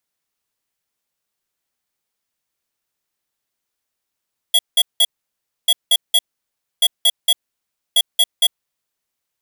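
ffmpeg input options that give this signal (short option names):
-f lavfi -i "aevalsrc='0.237*(2*lt(mod(3340*t,1),0.5)-1)*clip(min(mod(mod(t,1.14),0.23),0.05-mod(mod(t,1.14),0.23))/0.005,0,1)*lt(mod(t,1.14),0.69)':d=4.56:s=44100"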